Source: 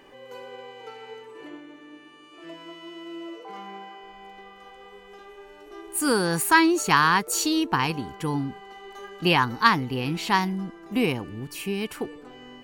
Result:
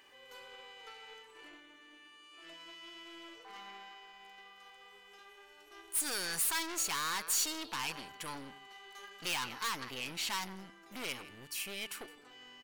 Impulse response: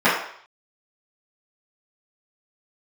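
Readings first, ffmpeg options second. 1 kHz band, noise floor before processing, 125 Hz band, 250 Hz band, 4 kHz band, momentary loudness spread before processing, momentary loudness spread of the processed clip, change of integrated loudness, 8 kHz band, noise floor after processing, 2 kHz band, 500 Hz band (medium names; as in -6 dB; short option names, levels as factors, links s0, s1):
-17.5 dB, -49 dBFS, -24.0 dB, -23.0 dB, -8.0 dB, 23 LU, 23 LU, -12.0 dB, -4.0 dB, -59 dBFS, -14.5 dB, -20.0 dB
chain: -filter_complex "[0:a]asplit=2[s0][s1];[s1]aecho=0:1:164:0.0944[s2];[s0][s2]amix=inputs=2:normalize=0,aeval=exprs='(tanh(28.2*val(0)+0.7)-tanh(0.7))/28.2':c=same,tiltshelf=f=970:g=-9.5,volume=0.447"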